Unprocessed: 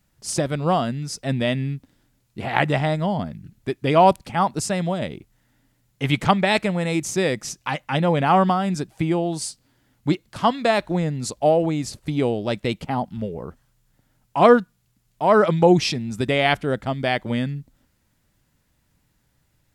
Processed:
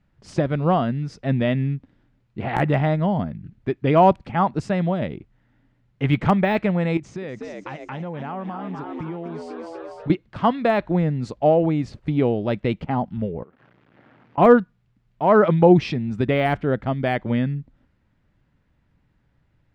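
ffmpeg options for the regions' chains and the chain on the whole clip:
-filter_complex "[0:a]asettb=1/sr,asplit=3[s0][s1][s2];[s0]atrim=end=6.974[s3];[s1]atrim=start=6.97:end=10.1,asetpts=PTS-STARTPTS,afade=t=in:d=0.004:c=qsin,afade=t=out:st=3.126:d=0.004:c=qsin,lowpass=f=9300:w=0.5412,lowpass=f=9300:w=1.3066,asplit=8[s4][s5][s6][s7][s8][s9][s10][s11];[s5]adelay=247,afreqshift=78,volume=0.376[s12];[s6]adelay=494,afreqshift=156,volume=0.211[s13];[s7]adelay=741,afreqshift=234,volume=0.117[s14];[s8]adelay=988,afreqshift=312,volume=0.0661[s15];[s9]adelay=1235,afreqshift=390,volume=0.0372[s16];[s10]adelay=1482,afreqshift=468,volume=0.0207[s17];[s11]adelay=1729,afreqshift=546,volume=0.0116[s18];[s4][s12][s13][s14][s15][s16][s17][s18]amix=inputs=8:normalize=0,atrim=end_sample=138033,acompressor=threshold=0.0316:ratio=5:attack=3.2:release=140:knee=1:detection=peak[s19];[s2]atrim=start=10.096[s20];[s3][s19]acrossfade=d=0.004:c1=hsin:c2=qsin[s21];[s21][s20]acrossfade=d=0.004:c1=qsin:c2=hsin,asettb=1/sr,asplit=3[s22][s23][s24];[s22]atrim=end=13.434[s25];[s23]atrim=start=13.43:end=14.38,asetpts=PTS-STARTPTS,afade=t=in:d=0.004:c=qsin,afade=t=out:st=0.946:d=0.004:c=qsin,aeval=exprs='val(0)+0.5*0.00708*sgn(val(0))':c=same,acompressor=threshold=0.00562:ratio=12:attack=3.2:release=140:knee=1:detection=peak,highpass=230,lowpass=2600[s26];[s24]atrim=start=14.376[s27];[s25][s26]acrossfade=d=0.004:c1=hsin:c2=qsin[s28];[s28][s27]acrossfade=d=0.004:c1=qsin:c2=hsin,lowpass=2100,deesser=0.85,equalizer=f=890:w=0.56:g=-3,volume=1.41"

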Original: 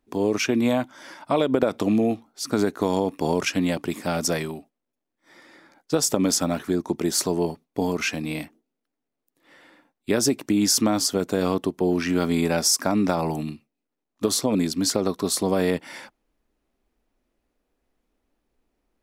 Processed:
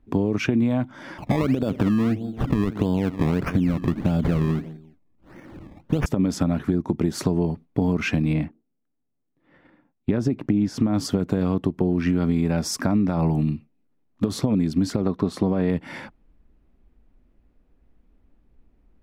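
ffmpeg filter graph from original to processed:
-filter_complex "[0:a]asettb=1/sr,asplit=3[s0][s1][s2];[s0]atrim=end=1.184[s3];[s1]atrim=start=1.18:end=6.06,asetpts=PTS-STARTPTS,afade=t=in:d=0.004:c=qsin,afade=t=out:st=4.876:d=0.004:c=qsin,tiltshelf=f=820:g=4,aecho=1:1:171|342:0.0891|0.0285,atrim=end_sample=215208,acrusher=samples=21:mix=1:aa=0.000001:lfo=1:lforange=21:lforate=1.6[s4];[s2]atrim=start=6.056[s5];[s3][s4]acrossfade=d=0.004:c1=hsin:c2=qsin[s6];[s6][s5]acrossfade=d=0.004:c1=qsin:c2=hsin,asettb=1/sr,asplit=3[s7][s8][s9];[s7]atrim=end=8.334[s10];[s8]atrim=start=8.33:end=10.94,asetpts=PTS-STARTPTS,afade=t=in:d=0.004:c=qsin,afade=t=out:st=2.606:d=0.004:c=qsin,lowpass=f=2300:p=1,agate=range=0.355:threshold=0.002:ratio=16:release=100:detection=peak[s11];[s9]atrim=start=10.936[s12];[s10][s11]acrossfade=d=0.004:c1=hsin:c2=qsin[s13];[s13][s12]acrossfade=d=0.004:c1=qsin:c2=hsin,asettb=1/sr,asplit=3[s14][s15][s16];[s14]atrim=end=15.024[s17];[s15]atrim=start=15.02:end=15.7,asetpts=PTS-STARTPTS,afade=t=in:d=0.004:c=qsin,afade=t=out:st=0.676:d=0.004:c=qsin,lowpass=f=2900:p=1,lowshelf=f=150:g=-5.5[s18];[s16]atrim=start=15.696[s19];[s17][s18]acrossfade=d=0.004:c1=hsin:c2=qsin[s20];[s20][s19]acrossfade=d=0.004:c1=qsin:c2=hsin,bass=f=250:g=15,treble=f=4000:g=-13,alimiter=limit=0.376:level=0:latency=1:release=179,acompressor=threshold=0.0891:ratio=6,volume=1.5"

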